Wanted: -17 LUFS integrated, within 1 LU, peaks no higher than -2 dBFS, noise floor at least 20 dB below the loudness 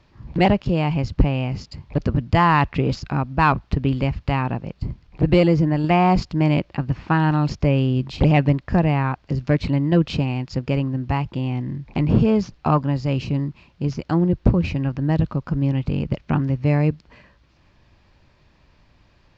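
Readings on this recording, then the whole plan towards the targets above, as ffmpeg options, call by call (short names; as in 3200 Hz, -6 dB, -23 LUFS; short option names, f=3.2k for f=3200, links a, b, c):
loudness -21.0 LUFS; peak -3.5 dBFS; loudness target -17.0 LUFS
-> -af "volume=4dB,alimiter=limit=-2dB:level=0:latency=1"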